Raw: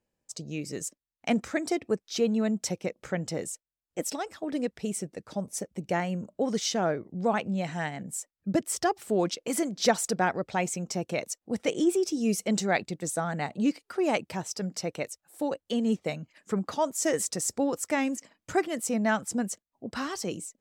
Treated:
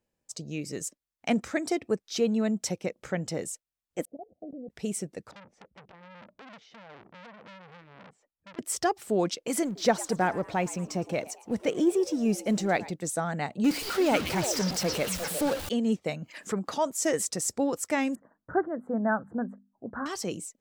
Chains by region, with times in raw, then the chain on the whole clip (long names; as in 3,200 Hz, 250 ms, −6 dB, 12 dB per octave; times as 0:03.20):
0:04.05–0:04.70: Chebyshev low-pass with heavy ripple 740 Hz, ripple 6 dB + output level in coarse steps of 20 dB
0:05.31–0:08.59: downward compressor, threshold −35 dBFS + head-to-tape spacing loss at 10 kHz 43 dB + saturating transformer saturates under 3,000 Hz
0:09.64–0:12.91: mu-law and A-law mismatch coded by mu + high-shelf EQ 2,600 Hz −7 dB + echo with shifted repeats 112 ms, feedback 47%, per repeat +120 Hz, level −19 dB
0:13.64–0:15.69: converter with a step at zero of −29.5 dBFS + echo through a band-pass that steps 118 ms, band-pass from 3,800 Hz, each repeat −1.4 octaves, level 0 dB
0:16.22–0:16.86: low-shelf EQ 120 Hz −10.5 dB + upward compression, threshold −29 dBFS
0:18.15–0:20.06: elliptic low-pass filter 1,600 Hz + mains-hum notches 50/100/150/200/250 Hz
whole clip: no processing